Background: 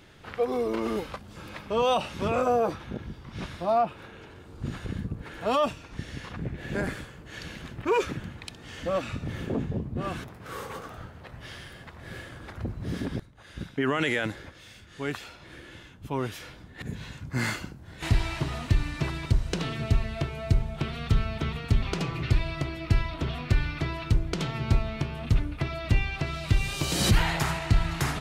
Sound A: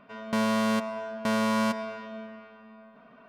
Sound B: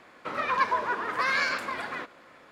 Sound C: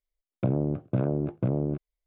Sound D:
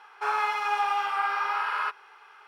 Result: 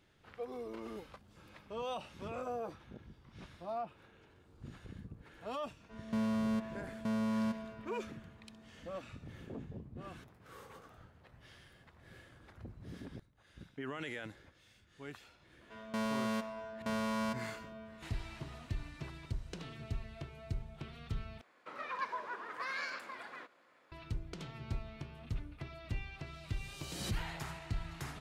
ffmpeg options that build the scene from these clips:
ffmpeg -i bed.wav -i cue0.wav -i cue1.wav -filter_complex "[1:a]asplit=2[link_01][link_02];[0:a]volume=-16dB[link_03];[link_01]equalizer=frequency=130:width_type=o:width=2.7:gain=14[link_04];[2:a]lowshelf=frequency=140:gain=-11.5[link_05];[link_03]asplit=2[link_06][link_07];[link_06]atrim=end=21.414[link_08];[link_05]atrim=end=2.51,asetpts=PTS-STARTPTS,volume=-13.5dB[link_09];[link_07]atrim=start=23.916[link_10];[link_04]atrim=end=3.28,asetpts=PTS-STARTPTS,volume=-16.5dB,afade=type=in:duration=0.004:curve=hsin,afade=type=out:start_time=3.276:duration=0.004:curve=hsin,adelay=5800[link_11];[link_02]atrim=end=3.28,asetpts=PTS-STARTPTS,volume=-10dB,afade=type=in:duration=0.004:curve=hsin,afade=type=out:start_time=3.276:duration=0.004:curve=hsin,adelay=15610[link_12];[link_08][link_09]acrossfade=duration=0.004:curve1=hsin:curve2=hsin[link_13];[link_13][link_10]acrossfade=duration=0.004:curve1=hsin:curve2=hsin[link_14];[link_14][link_11][link_12]amix=inputs=3:normalize=0" out.wav

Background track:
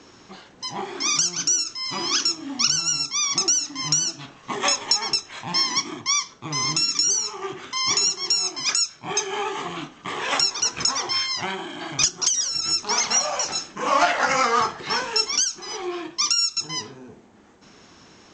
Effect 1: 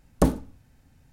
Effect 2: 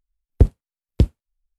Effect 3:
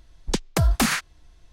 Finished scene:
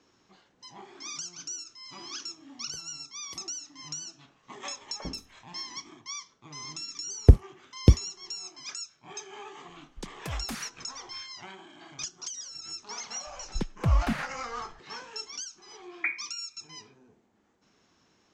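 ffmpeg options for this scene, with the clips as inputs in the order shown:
ffmpeg -i bed.wav -i cue0.wav -i cue1.wav -i cue2.wav -filter_complex "[2:a]asplit=2[link_01][link_02];[1:a]asplit=2[link_03][link_04];[3:a]asplit=2[link_05][link_06];[0:a]volume=-17dB[link_07];[link_01]aderivative[link_08];[link_03]acrossover=split=570|3000[link_09][link_10][link_11];[link_09]adelay=50[link_12];[link_11]adelay=150[link_13];[link_12][link_10][link_13]amix=inputs=3:normalize=0[link_14];[link_06]bass=frequency=250:gain=8,treble=frequency=4000:gain=-15[link_15];[link_04]lowpass=frequency=2100:width_type=q:width=0.5098,lowpass=frequency=2100:width_type=q:width=0.6013,lowpass=frequency=2100:width_type=q:width=0.9,lowpass=frequency=2100:width_type=q:width=2.563,afreqshift=-2500[link_16];[link_08]atrim=end=1.58,asetpts=PTS-STARTPTS,volume=-8.5dB,afade=type=in:duration=0.004:curve=hsin,afade=type=out:start_time=1.576:duration=0.004:curve=hsin,adelay=2330[link_17];[link_14]atrim=end=1.12,asetpts=PTS-STARTPTS,volume=-18dB,afade=type=in:duration=0.004:curve=hsin,afade=type=out:start_time=1.116:duration=0.004:curve=hsin,adelay=4780[link_18];[link_02]atrim=end=1.58,asetpts=PTS-STARTPTS,volume=-0.5dB,afade=type=in:duration=0.004:curve=hsin,afade=type=out:start_time=1.576:duration=0.004:curve=hsin,adelay=6880[link_19];[link_05]atrim=end=1.52,asetpts=PTS-STARTPTS,volume=-16.5dB,afade=type=in:duration=0.004:curve=hsin,afade=type=out:start_time=1.516:duration=0.004:curve=hsin,adelay=9690[link_20];[link_15]atrim=end=1.52,asetpts=PTS-STARTPTS,volume=-11dB,afade=type=in:duration=0.004:curve=hsin,afade=type=out:start_time=1.516:duration=0.004:curve=hsin,adelay=13270[link_21];[link_16]atrim=end=1.12,asetpts=PTS-STARTPTS,volume=-11dB,afade=type=in:duration=0.004:curve=hsin,afade=type=out:start_time=1.116:duration=0.004:curve=hsin,adelay=15820[link_22];[link_07][link_17][link_18][link_19][link_20][link_21][link_22]amix=inputs=7:normalize=0" out.wav

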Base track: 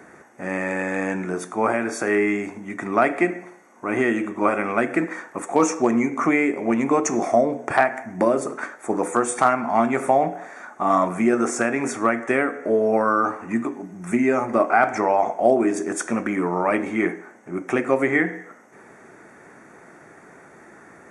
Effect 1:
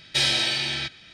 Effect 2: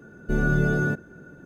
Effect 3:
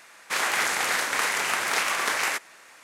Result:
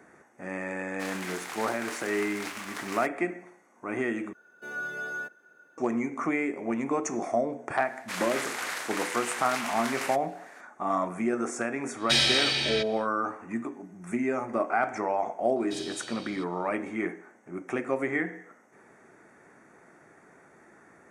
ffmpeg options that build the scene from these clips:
ffmpeg -i bed.wav -i cue0.wav -i cue1.wav -i cue2.wav -filter_complex "[3:a]asplit=2[link_01][link_02];[1:a]asplit=2[link_03][link_04];[0:a]volume=-9dB[link_05];[link_01]aeval=exprs='sgn(val(0))*max(abs(val(0))-0.0133,0)':channel_layout=same[link_06];[2:a]highpass=810[link_07];[link_04]equalizer=frequency=1800:width=1.2:gain=-11[link_08];[link_05]asplit=2[link_09][link_10];[link_09]atrim=end=4.334[link_11];[link_07]atrim=end=1.45,asetpts=PTS-STARTPTS,volume=-5dB[link_12];[link_10]atrim=start=5.776[link_13];[link_06]atrim=end=2.83,asetpts=PTS-STARTPTS,volume=-12dB,afade=type=in:duration=0.004:curve=hsin,afade=type=out:start_time=2.826:duration=0.004:curve=hsin,adelay=690[link_14];[link_02]atrim=end=2.83,asetpts=PTS-STARTPTS,volume=-9dB,afade=type=in:duration=0.004:curve=hsin,afade=type=out:start_time=2.826:duration=0.004:curve=hsin,adelay=343098S[link_15];[link_03]atrim=end=1.13,asetpts=PTS-STARTPTS,volume=-1dB,afade=type=in:duration=0.1,afade=type=out:start_time=1.03:duration=0.1,adelay=11950[link_16];[link_08]atrim=end=1.13,asetpts=PTS-STARTPTS,volume=-16.5dB,afade=type=in:duration=0.004:curve=hsin,afade=type=out:start_time=1.126:duration=0.004:curve=hsin,adelay=686196S[link_17];[link_11][link_12]acrossfade=duration=0.004:curve1=hsin:curve2=hsin[link_18];[link_18][link_13]acrossfade=duration=0.004:curve1=hsin:curve2=hsin[link_19];[link_19][link_14][link_15][link_16][link_17]amix=inputs=5:normalize=0" out.wav

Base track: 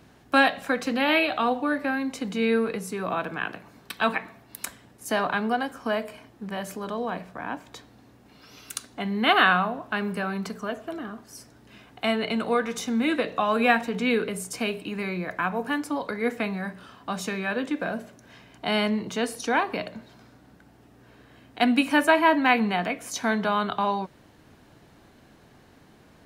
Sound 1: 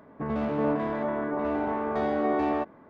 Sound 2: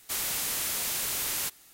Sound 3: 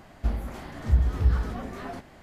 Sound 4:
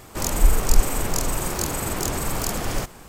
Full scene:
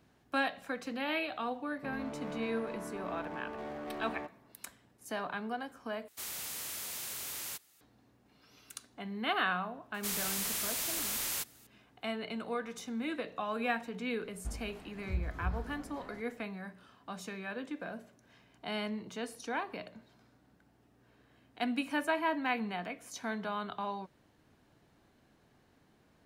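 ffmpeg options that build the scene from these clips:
ffmpeg -i bed.wav -i cue0.wav -i cue1.wav -i cue2.wav -filter_complex "[2:a]asplit=2[link_01][link_02];[0:a]volume=-12.5dB[link_03];[1:a]asoftclip=type=hard:threshold=-27dB[link_04];[link_01]highpass=52[link_05];[link_03]asplit=2[link_06][link_07];[link_06]atrim=end=6.084[link_08];[link_05]atrim=end=1.73,asetpts=PTS-STARTPTS,volume=-10dB[link_09];[link_07]atrim=start=7.806[link_10];[link_04]atrim=end=2.89,asetpts=PTS-STARTPTS,volume=-12dB,afade=type=in:duration=0.004:curve=hsin,afade=type=out:start_time=2.886:duration=0.004:curve=hsin,adelay=1630[link_11];[link_02]atrim=end=1.73,asetpts=PTS-STARTPTS,volume=-4.5dB,afade=type=in:duration=0.004:curve=hsin,afade=type=out:start_time=1.726:duration=0.004:curve=hsin,adelay=438354S[link_12];[3:a]atrim=end=2.22,asetpts=PTS-STARTPTS,volume=-14dB,afade=type=in:duration=0.004:curve=hsin,afade=type=out:start_time=2.216:duration=0.004:curve=hsin,adelay=14210[link_13];[link_08][link_09]acrossfade=duration=0.004:curve1=hsin:curve2=hsin[link_14];[link_14][link_10]acrossfade=duration=0.004:curve1=hsin:curve2=hsin[link_15];[link_15][link_11][link_12][link_13]amix=inputs=4:normalize=0" out.wav

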